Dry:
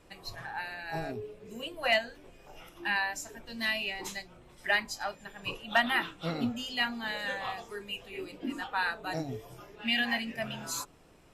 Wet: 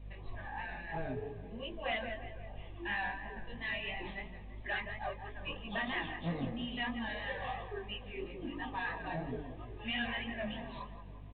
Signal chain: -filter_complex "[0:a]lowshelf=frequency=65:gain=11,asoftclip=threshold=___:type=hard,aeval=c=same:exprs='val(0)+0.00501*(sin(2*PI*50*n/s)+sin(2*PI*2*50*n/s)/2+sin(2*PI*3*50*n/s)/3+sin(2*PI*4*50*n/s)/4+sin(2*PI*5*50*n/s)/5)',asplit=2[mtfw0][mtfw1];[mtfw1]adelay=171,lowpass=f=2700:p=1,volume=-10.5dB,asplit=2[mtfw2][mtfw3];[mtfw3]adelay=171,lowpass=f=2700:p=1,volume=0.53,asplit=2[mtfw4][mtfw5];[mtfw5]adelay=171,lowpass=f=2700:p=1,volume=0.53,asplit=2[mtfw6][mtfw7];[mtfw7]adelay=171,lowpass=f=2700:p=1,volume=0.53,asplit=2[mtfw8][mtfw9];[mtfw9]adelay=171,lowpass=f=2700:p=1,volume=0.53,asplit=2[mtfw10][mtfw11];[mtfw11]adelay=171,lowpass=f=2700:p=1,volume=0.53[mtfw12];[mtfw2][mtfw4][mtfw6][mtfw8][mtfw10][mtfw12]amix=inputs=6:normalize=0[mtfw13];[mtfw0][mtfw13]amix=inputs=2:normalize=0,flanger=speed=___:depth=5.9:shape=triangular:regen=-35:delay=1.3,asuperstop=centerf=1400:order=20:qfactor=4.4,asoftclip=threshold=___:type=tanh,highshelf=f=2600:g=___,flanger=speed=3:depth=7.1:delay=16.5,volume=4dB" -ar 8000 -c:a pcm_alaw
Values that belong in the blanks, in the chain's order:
-21.5dB, 0.4, -30.5dB, -4